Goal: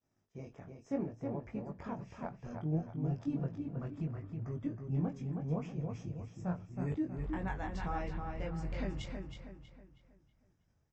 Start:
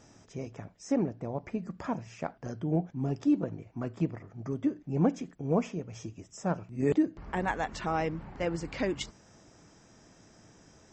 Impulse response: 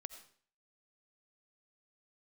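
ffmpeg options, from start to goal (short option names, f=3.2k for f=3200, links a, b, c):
-filter_complex "[0:a]aemphasis=mode=reproduction:type=cd,agate=range=-33dB:threshold=-46dB:ratio=3:detection=peak,asubboost=boost=4.5:cutoff=140,alimiter=limit=-19.5dB:level=0:latency=1:release=244,flanger=delay=19:depth=3.6:speed=0.7,asplit=2[a][b];[b]adelay=320,lowpass=f=4.4k:p=1,volume=-5dB,asplit=2[c][d];[d]adelay=320,lowpass=f=4.4k:p=1,volume=0.41,asplit=2[e][f];[f]adelay=320,lowpass=f=4.4k:p=1,volume=0.41,asplit=2[g][h];[h]adelay=320,lowpass=f=4.4k:p=1,volume=0.41,asplit=2[i][j];[j]adelay=320,lowpass=f=4.4k:p=1,volume=0.41[k];[a][c][e][g][i][k]amix=inputs=6:normalize=0,volume=-5dB"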